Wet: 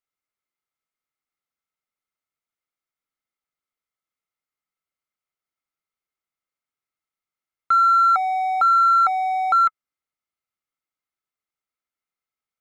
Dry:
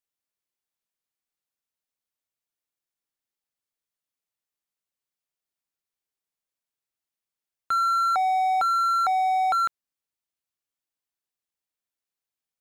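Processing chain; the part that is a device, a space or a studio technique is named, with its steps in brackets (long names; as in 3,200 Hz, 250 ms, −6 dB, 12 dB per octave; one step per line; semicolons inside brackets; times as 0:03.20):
inside a helmet (high-shelf EQ 3,700 Hz −7 dB; hollow resonant body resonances 1,300/2,100 Hz, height 13 dB, ringing for 30 ms)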